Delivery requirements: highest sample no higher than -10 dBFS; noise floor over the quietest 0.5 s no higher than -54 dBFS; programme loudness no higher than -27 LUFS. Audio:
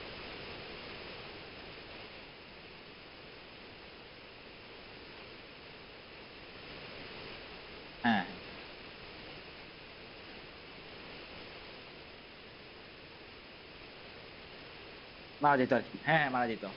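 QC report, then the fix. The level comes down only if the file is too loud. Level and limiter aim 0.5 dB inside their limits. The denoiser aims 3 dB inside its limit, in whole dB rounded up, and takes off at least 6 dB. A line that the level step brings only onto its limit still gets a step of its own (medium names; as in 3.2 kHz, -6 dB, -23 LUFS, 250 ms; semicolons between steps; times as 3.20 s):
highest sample -14.5 dBFS: pass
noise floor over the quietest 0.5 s -52 dBFS: fail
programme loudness -39.0 LUFS: pass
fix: noise reduction 6 dB, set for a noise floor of -52 dBFS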